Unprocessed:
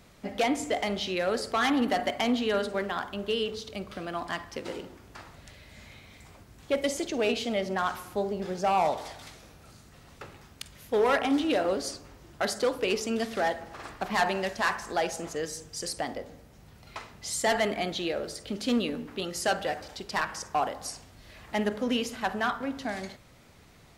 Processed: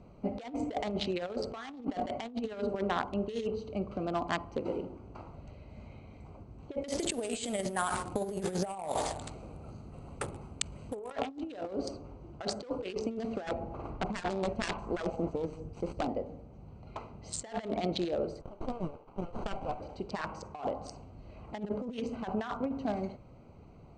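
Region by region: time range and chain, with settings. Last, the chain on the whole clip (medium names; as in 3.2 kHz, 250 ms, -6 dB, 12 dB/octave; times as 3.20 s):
6.88–11.11 s: compressor with a negative ratio -31 dBFS, ratio -0.5 + careless resampling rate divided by 4×, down filtered, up zero stuff + treble shelf 10 kHz +4 dB
13.47–16.09 s: self-modulated delay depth 0.6 ms + tilt EQ -1.5 dB/octave
18.41–19.80 s: high-pass 720 Hz 24 dB/octave + sliding maximum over 17 samples
whole clip: local Wiener filter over 25 samples; steep low-pass 8.9 kHz 72 dB/octave; compressor with a negative ratio -33 dBFS, ratio -0.5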